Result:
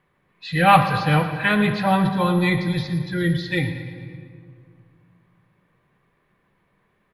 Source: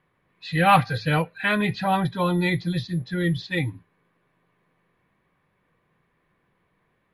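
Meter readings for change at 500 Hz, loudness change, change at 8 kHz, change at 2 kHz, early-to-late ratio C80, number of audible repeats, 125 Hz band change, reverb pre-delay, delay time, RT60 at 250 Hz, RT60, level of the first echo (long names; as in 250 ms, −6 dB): +3.0 dB, +3.5 dB, +2.0 dB, +3.0 dB, 8.5 dB, 5, +3.5 dB, 5 ms, 114 ms, 2.5 s, 2.1 s, −14.0 dB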